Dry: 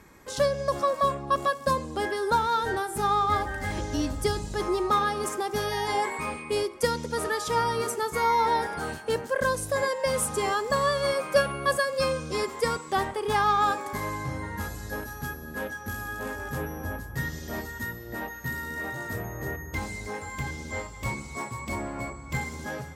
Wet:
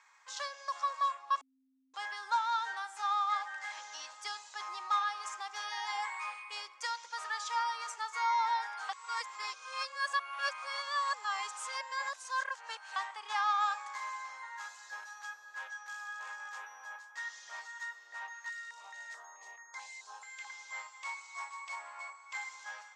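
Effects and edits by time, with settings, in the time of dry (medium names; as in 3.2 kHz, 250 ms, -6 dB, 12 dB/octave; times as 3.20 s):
1.41–1.94 s: bleep 264 Hz -18.5 dBFS
8.89–12.96 s: reverse
18.49–20.50 s: step-sequenced notch 4.6 Hz 970–2800 Hz
whole clip: elliptic band-pass 930–7000 Hz, stop band 60 dB; trim -5.5 dB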